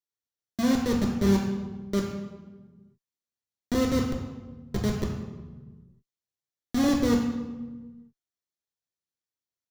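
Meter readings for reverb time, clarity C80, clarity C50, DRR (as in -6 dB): 1.3 s, 6.0 dB, 4.0 dB, -1.0 dB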